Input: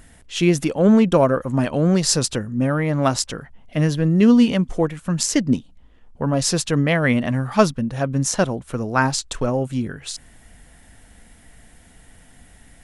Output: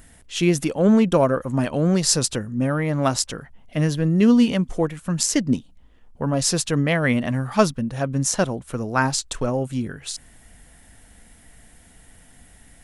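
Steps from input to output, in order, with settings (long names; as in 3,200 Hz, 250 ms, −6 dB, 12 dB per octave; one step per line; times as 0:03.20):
high-shelf EQ 8,800 Hz +6.5 dB
level −2 dB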